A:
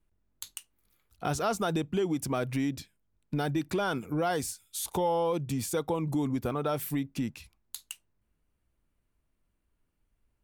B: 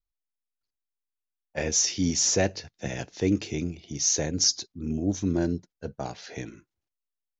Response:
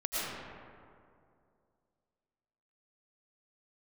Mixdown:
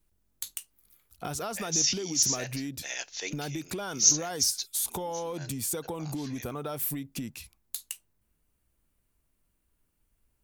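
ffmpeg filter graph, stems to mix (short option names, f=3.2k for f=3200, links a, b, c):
-filter_complex "[0:a]acompressor=threshold=-33dB:ratio=6,highshelf=f=6.1k:g=12,asoftclip=type=tanh:threshold=-23dB,volume=1dB,asplit=2[a][b];[1:a]highpass=630,tiltshelf=f=1.5k:g=-8.5,volume=0dB[c];[b]apad=whole_len=326001[d];[c][d]sidechaincompress=threshold=-44dB:ratio=5:attack=8.3:release=112[e];[a][e]amix=inputs=2:normalize=0"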